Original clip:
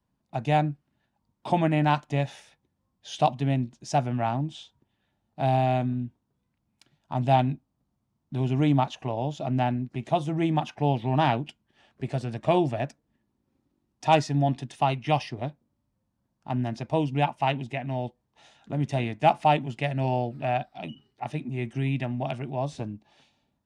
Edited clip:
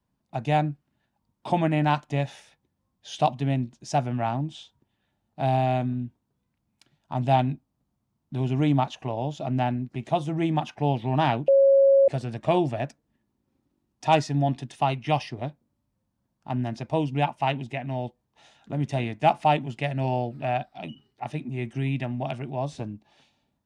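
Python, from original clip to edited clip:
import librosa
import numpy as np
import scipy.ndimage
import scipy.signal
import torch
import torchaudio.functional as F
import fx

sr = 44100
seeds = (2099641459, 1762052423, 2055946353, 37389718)

y = fx.edit(x, sr, fx.bleep(start_s=11.48, length_s=0.6, hz=548.0, db=-13.5), tone=tone)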